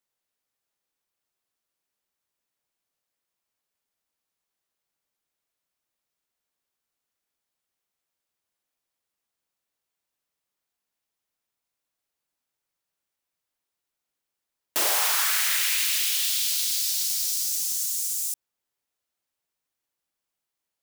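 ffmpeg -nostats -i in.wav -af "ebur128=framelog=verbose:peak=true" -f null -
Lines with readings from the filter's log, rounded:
Integrated loudness:
  I:         -22.3 LUFS
  Threshold: -32.4 LUFS
Loudness range:
  LRA:         8.8 LU
  Threshold: -44.3 LUFS
  LRA low:   -30.6 LUFS
  LRA high:  -21.8 LUFS
True peak:
  Peak:      -11.0 dBFS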